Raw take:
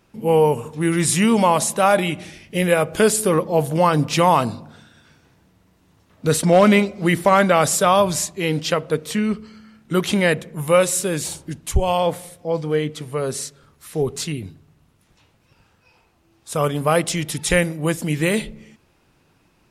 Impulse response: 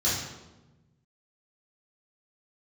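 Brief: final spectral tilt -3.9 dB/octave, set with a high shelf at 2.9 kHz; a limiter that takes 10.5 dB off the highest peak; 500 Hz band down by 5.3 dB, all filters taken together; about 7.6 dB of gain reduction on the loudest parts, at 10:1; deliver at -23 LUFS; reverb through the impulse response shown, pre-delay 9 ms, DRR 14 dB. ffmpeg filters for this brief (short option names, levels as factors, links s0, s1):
-filter_complex "[0:a]equalizer=f=500:t=o:g=-6.5,highshelf=f=2900:g=6.5,acompressor=threshold=0.112:ratio=10,alimiter=limit=0.119:level=0:latency=1,asplit=2[s0][s1];[1:a]atrim=start_sample=2205,adelay=9[s2];[s1][s2]afir=irnorm=-1:irlink=0,volume=0.0562[s3];[s0][s3]amix=inputs=2:normalize=0,volume=1.78"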